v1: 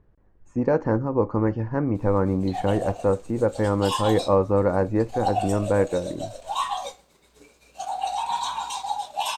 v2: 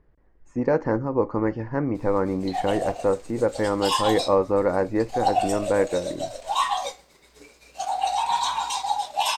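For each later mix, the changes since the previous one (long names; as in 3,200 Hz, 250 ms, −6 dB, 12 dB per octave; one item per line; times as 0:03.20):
background +3.0 dB
master: add thirty-one-band graphic EQ 100 Hz −11 dB, 200 Hz −5 dB, 2,000 Hz +6 dB, 5,000 Hz +5 dB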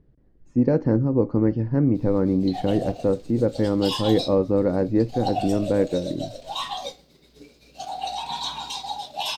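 master: add octave-band graphic EQ 125/250/1,000/2,000/4,000/8,000 Hz +8/+6/−9/−7/+5/−10 dB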